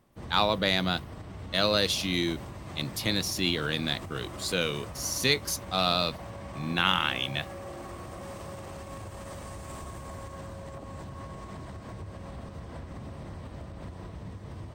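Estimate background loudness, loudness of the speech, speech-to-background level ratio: −42.0 LKFS, −28.0 LKFS, 14.0 dB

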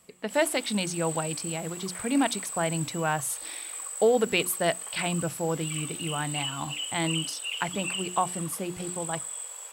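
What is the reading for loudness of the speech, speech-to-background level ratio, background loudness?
−29.5 LKFS, 5.0 dB, −34.5 LKFS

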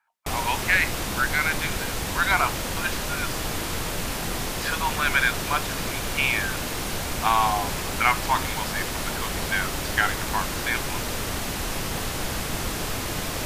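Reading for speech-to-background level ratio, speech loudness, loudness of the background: 2.5 dB, −26.0 LKFS, −28.5 LKFS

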